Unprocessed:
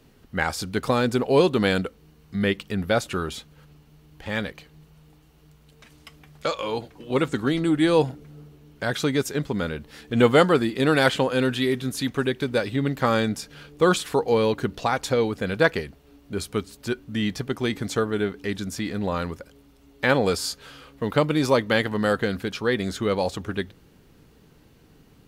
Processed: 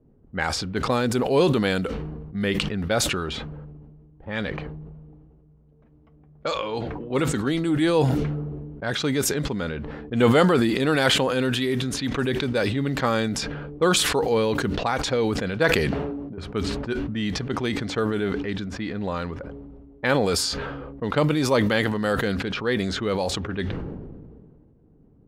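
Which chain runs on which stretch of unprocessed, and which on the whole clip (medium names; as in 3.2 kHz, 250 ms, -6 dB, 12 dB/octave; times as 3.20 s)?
15.85–16.38 s: high-pass 110 Hz + compression 4:1, threshold -34 dBFS
whole clip: level-controlled noise filter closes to 470 Hz, open at -20 dBFS; decay stretcher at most 28 dB/s; trim -2 dB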